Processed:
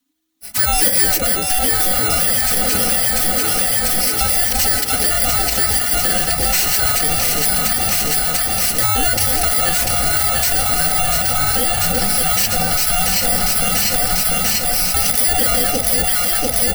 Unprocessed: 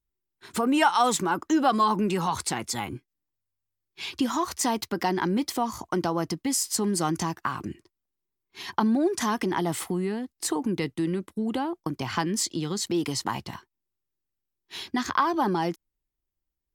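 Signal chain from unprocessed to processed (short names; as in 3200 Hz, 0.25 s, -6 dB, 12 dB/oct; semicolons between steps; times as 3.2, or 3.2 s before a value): FFT order left unsorted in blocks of 32 samples; de-hum 88.11 Hz, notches 34; frequency shift -320 Hz; low shelf 290 Hz -11 dB; soft clip -20 dBFS, distortion -12 dB; comb 4 ms, depth 77%; echo with dull and thin repeats by turns 0.346 s, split 830 Hz, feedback 86%, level -4 dB; vocal rider 2 s; maximiser +22 dB; gain -5.5 dB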